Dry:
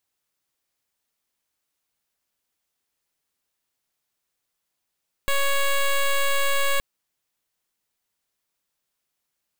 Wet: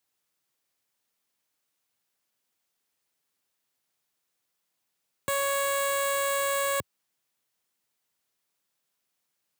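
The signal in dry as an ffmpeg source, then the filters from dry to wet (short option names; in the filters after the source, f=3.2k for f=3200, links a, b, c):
-f lavfi -i "aevalsrc='0.0944*(2*lt(mod(556*t,1),0.1)-1)':d=1.52:s=44100"
-filter_complex "[0:a]highpass=f=96:w=0.5412,highpass=f=96:w=1.3066,acrossover=split=420|1500|5100[a][b][c][d];[c]asoftclip=type=tanh:threshold=-36dB[e];[a][b][e][d]amix=inputs=4:normalize=0"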